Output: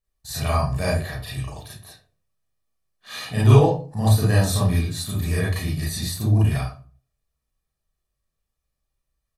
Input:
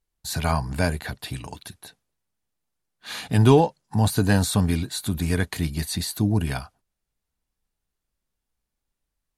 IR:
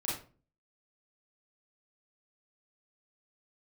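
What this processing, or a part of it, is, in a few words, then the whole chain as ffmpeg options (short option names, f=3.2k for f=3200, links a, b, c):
microphone above a desk: -filter_complex "[0:a]aecho=1:1:1.7:0.52[a];[1:a]atrim=start_sample=2205[b];[a][b]afir=irnorm=-1:irlink=0,volume=-4dB"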